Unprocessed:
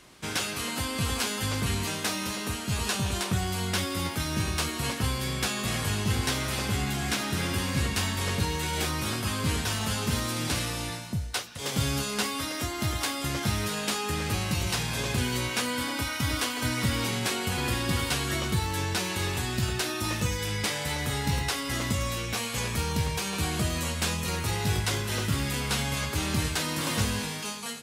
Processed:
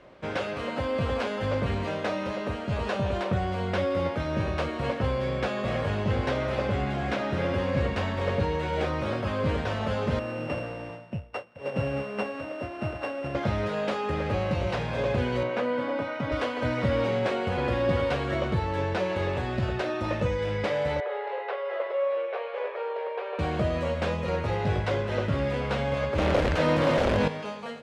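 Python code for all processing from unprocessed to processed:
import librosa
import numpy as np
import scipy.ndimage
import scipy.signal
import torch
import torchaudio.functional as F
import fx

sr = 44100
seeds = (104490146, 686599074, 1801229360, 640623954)

y = fx.chain(x, sr, fx.sample_sort(block=16),
    fx.highpass(hz=91.0, slope=12),
    fx.upward_expand(threshold_db=-45.0, expansion=1.5), at=(10.19, 13.35))
y = fx.chain(y, sr, fx.highpass(hz=130.0, slope=24),
    fx.high_shelf(hz=3200.0, db=-9.5), at=(15.43, 16.32))
y = fx.chain(y, sr, fx.brickwall_bandpass(low_hz=360.0, high_hz=9400.0),
    fx.air_absorb(metres=380.0), at=(21.0, 23.39))
y = fx.chain(y, sr, fx.low_shelf(hz=69.0, db=10.0),
    fx.overflow_wrap(gain_db=20.5),
    fx.env_flatten(amount_pct=100), at=(26.18, 27.28))
y = scipy.signal.sosfilt(scipy.signal.butter(2, 2200.0, 'lowpass', fs=sr, output='sos'), y)
y = fx.peak_eq(y, sr, hz=560.0, db=14.5, octaves=0.53)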